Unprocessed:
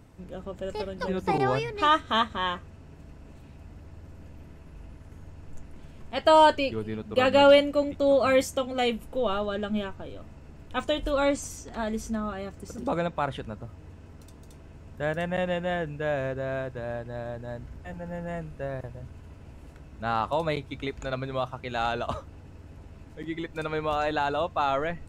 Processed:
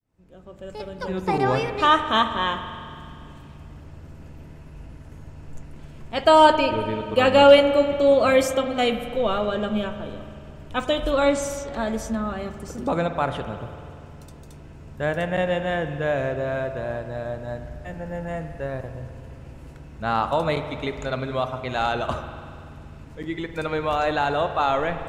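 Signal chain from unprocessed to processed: fade-in on the opening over 1.59 s; spring tank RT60 2.4 s, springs 48 ms, chirp 35 ms, DRR 8.5 dB; trim +4 dB

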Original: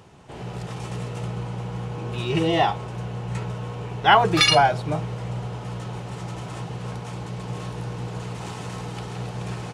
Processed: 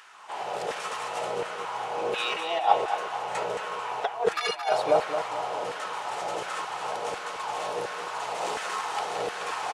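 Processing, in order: dynamic bell 690 Hz, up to +3 dB, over -34 dBFS, Q 1; compressor with a negative ratio -23 dBFS, ratio -0.5; LFO high-pass saw down 1.4 Hz 460–1600 Hz; feedback delay 221 ms, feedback 46%, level -8.5 dB

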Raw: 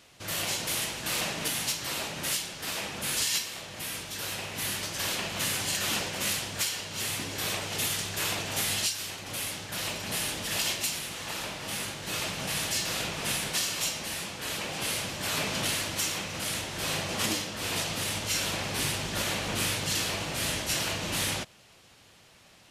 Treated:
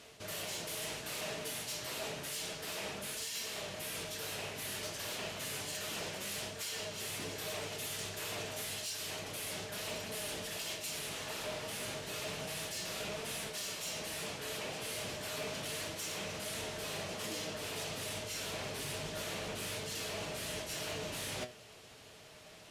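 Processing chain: flange 0.3 Hz, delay 4.2 ms, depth 4.4 ms, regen +81%; reverse; compression 6:1, threshold -43 dBFS, peak gain reduction 13.5 dB; reverse; small resonant body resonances 440/620 Hz, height 12 dB, ringing for 100 ms; Chebyshev shaper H 5 -16 dB, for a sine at -28.5 dBFS

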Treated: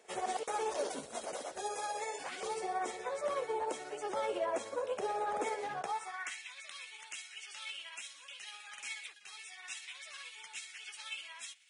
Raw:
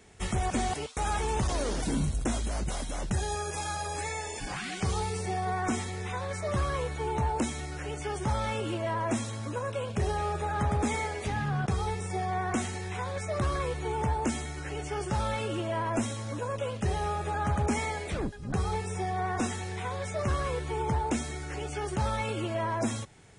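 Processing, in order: high-pass sweep 500 Hz -> 2.7 kHz, 11.49–12.84 s; granular stretch 0.5×, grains 123 ms; trim -5.5 dB

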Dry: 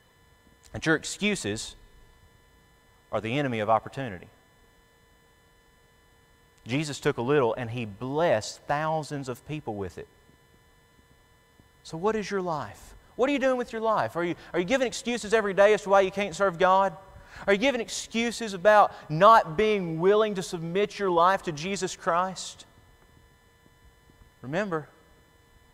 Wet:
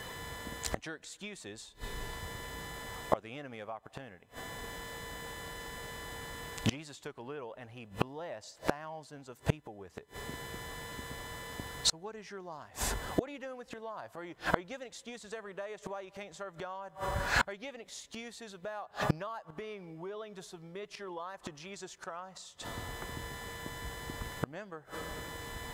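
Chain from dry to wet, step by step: compression 6:1, threshold -25 dBFS, peak gain reduction 13 dB; bass shelf 260 Hz -5.5 dB; inverted gate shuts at -32 dBFS, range -31 dB; trim +18 dB

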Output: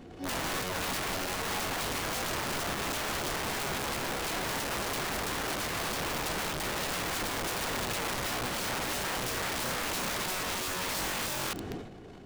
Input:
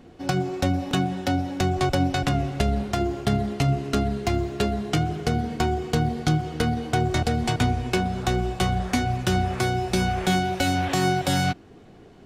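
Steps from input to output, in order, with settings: transient shaper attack -7 dB, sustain +11 dB; peak limiter -22 dBFS, peak gain reduction 15 dB; integer overflow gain 28.5 dB

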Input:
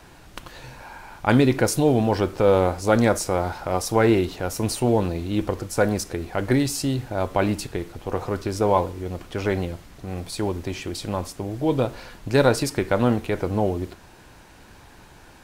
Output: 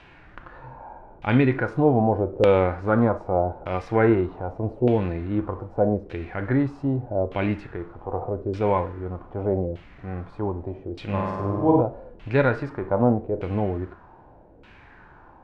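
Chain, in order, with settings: 11.04–11.81 s: flutter echo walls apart 8.6 m, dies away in 1.4 s; harmonic-percussive split percussive -9 dB; LFO low-pass saw down 0.82 Hz 460–2900 Hz

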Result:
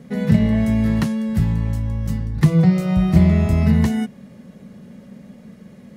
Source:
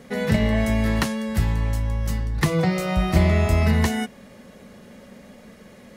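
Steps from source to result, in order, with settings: peaking EQ 160 Hz +14.5 dB 1.8 oct; trim -5.5 dB

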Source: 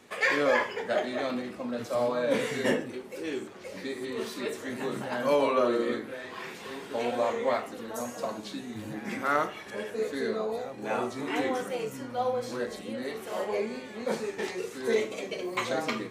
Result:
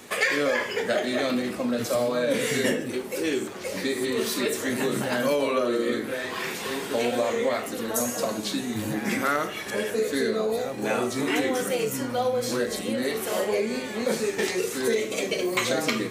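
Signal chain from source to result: dynamic bell 910 Hz, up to -7 dB, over -44 dBFS, Q 1.6; compression, threshold -30 dBFS, peak gain reduction 8.5 dB; treble shelf 7 kHz +10.5 dB; trim +9 dB

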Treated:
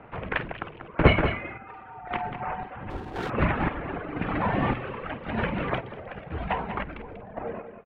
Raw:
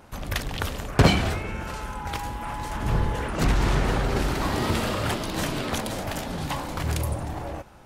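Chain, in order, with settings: mistuned SSB -100 Hz 160–2700 Hz; reverb removal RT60 2 s; doubling 50 ms -13.5 dB; delay 191 ms -9 dB; square tremolo 0.95 Hz, depth 60%, duty 50%; 2.90–3.30 s: sliding maximum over 9 samples; trim +4.5 dB

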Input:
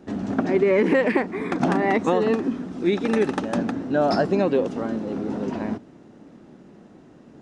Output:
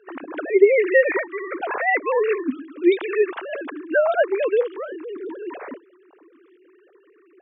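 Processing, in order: formants replaced by sine waves; high-pass 890 Hz 6 dB/octave; trim +7.5 dB

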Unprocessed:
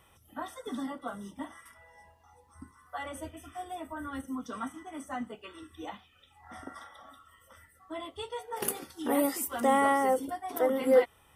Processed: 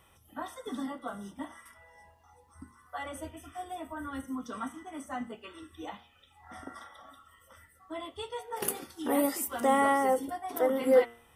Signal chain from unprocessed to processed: de-hum 117.5 Hz, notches 32

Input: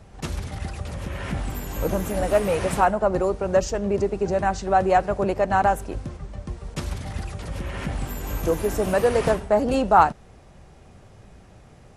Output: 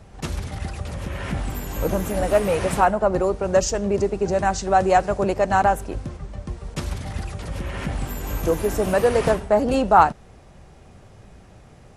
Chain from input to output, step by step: 3.39–5.63 s: dynamic bell 7 kHz, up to +7 dB, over -46 dBFS, Q 0.8; trim +1.5 dB

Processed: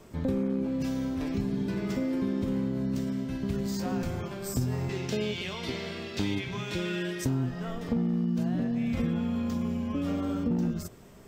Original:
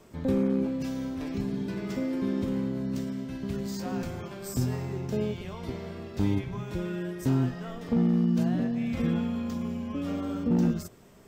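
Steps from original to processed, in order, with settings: 4.89–7.25 s: frequency weighting D; compression, threshold -28 dBFS, peak gain reduction 7.5 dB; bass shelf 120 Hz +4 dB; trim +2 dB

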